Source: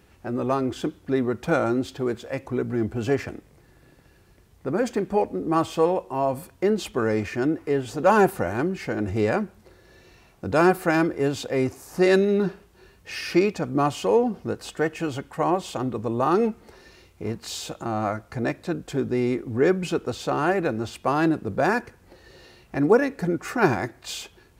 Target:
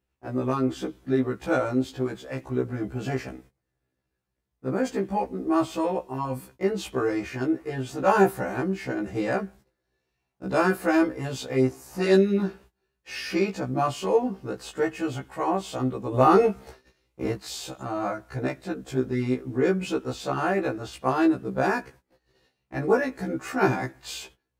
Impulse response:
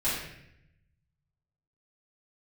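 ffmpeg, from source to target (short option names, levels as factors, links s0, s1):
-filter_complex "[0:a]agate=range=0.0708:threshold=0.00501:ratio=16:detection=peak,asettb=1/sr,asplit=3[s0][s1][s2];[s0]atrim=end=16.144[s3];[s1]atrim=start=16.14:end=17.36,asetpts=PTS-STARTPTS,afade=t=in:d=0.004:c=qsin,afade=t=out:st=1.216:d=0.004:c=qsin,acontrast=73[s4];[s2]atrim=start=17.356[s5];[s3][s4]acrossfade=d=0.004:c1=hsin:c2=qsin[s6];[s6][s5]acrossfade=d=0.004:c1=qsin:c2=hsin,afftfilt=real='re*1.73*eq(mod(b,3),0)':imag='im*1.73*eq(mod(b,3),0)':win_size=2048:overlap=0.75"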